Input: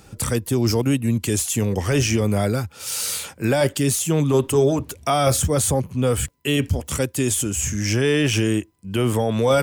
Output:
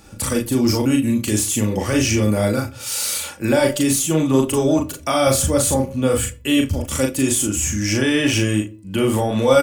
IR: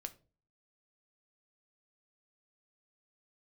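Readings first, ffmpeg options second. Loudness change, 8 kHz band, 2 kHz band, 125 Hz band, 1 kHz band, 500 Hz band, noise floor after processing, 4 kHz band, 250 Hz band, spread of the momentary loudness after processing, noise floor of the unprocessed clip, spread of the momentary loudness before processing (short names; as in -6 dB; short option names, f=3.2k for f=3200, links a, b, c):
+2.5 dB, +3.0 dB, +3.0 dB, -1.0 dB, +1.0 dB, +1.5 dB, -39 dBFS, +2.5 dB, +4.0 dB, 5 LU, -49 dBFS, 6 LU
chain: -filter_complex "[0:a]aecho=1:1:3.5:0.47,asplit=2[a][b];[1:a]atrim=start_sample=2205,adelay=38[c];[b][c]afir=irnorm=-1:irlink=0,volume=1dB[d];[a][d]amix=inputs=2:normalize=0"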